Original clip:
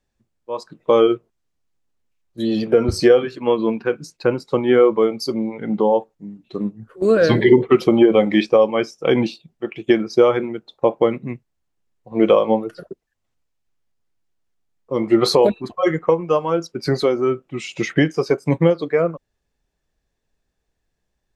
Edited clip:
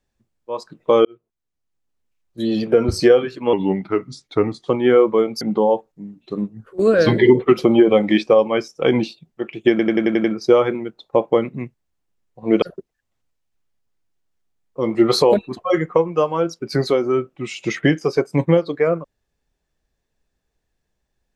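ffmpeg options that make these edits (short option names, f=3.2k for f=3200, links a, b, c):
-filter_complex "[0:a]asplit=12[a][b][c][d][e][f][g][h][i][j][k][l];[a]atrim=end=1.05,asetpts=PTS-STARTPTS,afade=t=out:st=1.046:d=0.004:c=hsin[m];[b]atrim=start=1.05:end=3.534,asetpts=PTS-STARTPTS,afade=t=in:d=1.61:c=qsin[n];[c]atrim=start=3.53:end=4.52,asetpts=PTS-STARTPTS,asetrate=37926,aresample=44100,atrim=end_sample=50766,asetpts=PTS-STARTPTS[o];[d]atrim=start=4.516:end=5.252[p];[e]atrim=start=5.638:end=10.022[q];[f]atrim=start=9.928:end=10.022[r];[g]atrim=start=9.928:end=10.022[s];[h]atrim=start=9.928:end=10.022[t];[i]atrim=start=9.928:end=10.022[u];[j]atrim=start=9.928:end=10.022[v];[k]atrim=start=9.928:end=12.312[w];[l]atrim=start=12.748[x];[m][n]concat=n=2:v=0:a=1[y];[y][o]acrossfade=d=0.004:c1=hsin:c2=hsin[z];[z][p]acrossfade=d=0.004:c1=hsin:c2=hsin[aa];[aa][q]acrossfade=d=0.004:c1=hsin:c2=hsin[ab];[ab][r]acrossfade=d=0.004:c1=hsin:c2=hsin[ac];[ac][s]acrossfade=d=0.004:c1=hsin:c2=hsin[ad];[ad][t]acrossfade=d=0.004:c1=hsin:c2=hsin[ae];[ae][u]acrossfade=d=0.004:c1=hsin:c2=hsin[af];[af][v]acrossfade=d=0.004:c1=hsin:c2=hsin[ag];[ag][w]acrossfade=d=0.004:c1=hsin:c2=hsin[ah];[ah][x]acrossfade=d=0.004:c1=hsin:c2=hsin"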